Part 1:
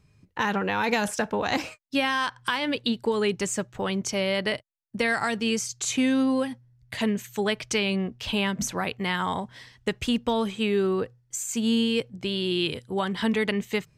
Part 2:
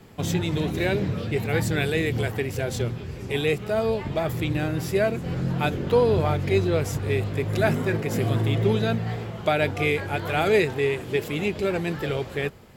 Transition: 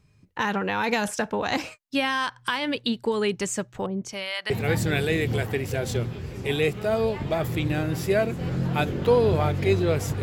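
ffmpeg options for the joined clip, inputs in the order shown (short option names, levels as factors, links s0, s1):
-filter_complex "[0:a]asettb=1/sr,asplit=3[s0][s1][s2];[s0]atrim=end=3.864[s3];[s1]atrim=start=3.86:end=4.5,asetpts=PTS-STARTPTS,afade=t=in:d=0.004:c=qsin,afade=t=out:st=0.636:d=0.004:c=qsin,acrossover=split=750[s4][s5];[s4]aeval=exprs='val(0)*(1-1/2+1/2*cos(2*PI*1*n/s))':c=same[s6];[s5]aeval=exprs='val(0)*(1-1/2-1/2*cos(2*PI*1*n/s))':c=same[s7];[s6][s7]amix=inputs=2:normalize=0[s8];[s2]atrim=start=4.496[s9];[s3][s8]acrossfade=d=0.004:c1=hsin:c2=qsin[s10];[s10][s9]acrossfade=d=0.004:c1=qsin:c2=hsin,apad=whole_dur=10.22,atrim=end=10.22,atrim=end=4.502[s11];[1:a]atrim=start=1.348:end=7.07[s12];[s11][s12]acrossfade=d=0.004:c1=hsin:c2=hsin"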